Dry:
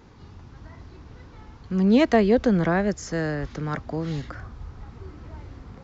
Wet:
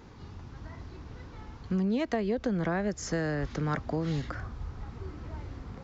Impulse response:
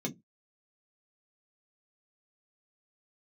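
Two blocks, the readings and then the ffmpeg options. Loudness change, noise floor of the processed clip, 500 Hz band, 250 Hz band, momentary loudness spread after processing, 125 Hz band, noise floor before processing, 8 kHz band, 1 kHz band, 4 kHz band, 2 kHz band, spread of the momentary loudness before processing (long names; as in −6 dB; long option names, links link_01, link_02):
−9.5 dB, −48 dBFS, −9.0 dB, −8.5 dB, 17 LU, −4.5 dB, −47 dBFS, can't be measured, −7.0 dB, −7.0 dB, −6.5 dB, 23 LU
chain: -af "acompressor=threshold=-25dB:ratio=16"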